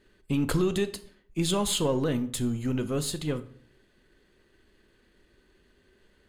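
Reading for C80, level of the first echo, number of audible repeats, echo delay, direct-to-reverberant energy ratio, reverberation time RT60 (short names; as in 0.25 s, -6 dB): 19.5 dB, none, none, none, 11.0 dB, 0.55 s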